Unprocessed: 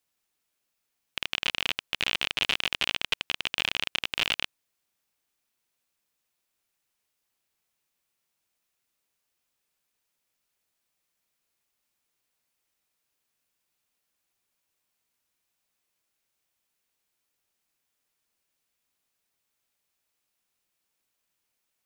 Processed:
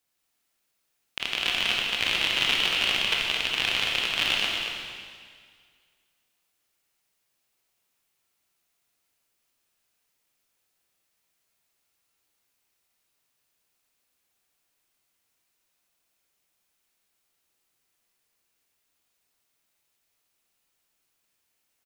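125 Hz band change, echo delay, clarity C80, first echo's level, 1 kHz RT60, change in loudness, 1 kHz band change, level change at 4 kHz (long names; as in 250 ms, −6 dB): +3.5 dB, 235 ms, 1.0 dB, −7.5 dB, 1.9 s, +4.5 dB, +4.0 dB, +4.5 dB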